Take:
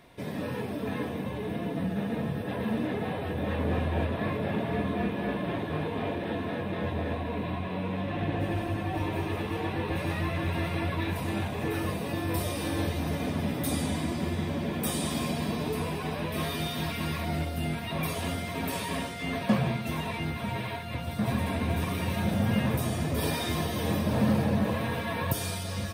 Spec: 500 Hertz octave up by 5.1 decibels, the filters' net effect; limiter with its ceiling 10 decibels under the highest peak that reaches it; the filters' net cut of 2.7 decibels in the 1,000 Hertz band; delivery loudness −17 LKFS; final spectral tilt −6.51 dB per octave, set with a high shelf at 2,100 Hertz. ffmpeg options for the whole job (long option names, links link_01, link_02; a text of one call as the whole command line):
ffmpeg -i in.wav -af "equalizer=frequency=500:width_type=o:gain=8.5,equalizer=frequency=1000:width_type=o:gain=-6.5,highshelf=frequency=2100:gain=-8.5,volume=14.5dB,alimiter=limit=-7.5dB:level=0:latency=1" out.wav